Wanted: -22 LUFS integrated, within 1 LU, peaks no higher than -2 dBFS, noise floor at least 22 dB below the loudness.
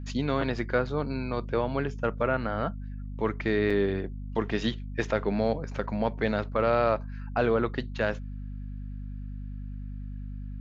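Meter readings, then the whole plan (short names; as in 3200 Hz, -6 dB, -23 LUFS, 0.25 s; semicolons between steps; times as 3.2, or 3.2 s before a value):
dropouts 1; longest dropout 5.1 ms; hum 50 Hz; harmonics up to 250 Hz; hum level -34 dBFS; loudness -29.0 LUFS; peak -10.0 dBFS; loudness target -22.0 LUFS
-> interpolate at 3.7, 5.1 ms; de-hum 50 Hz, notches 5; gain +7 dB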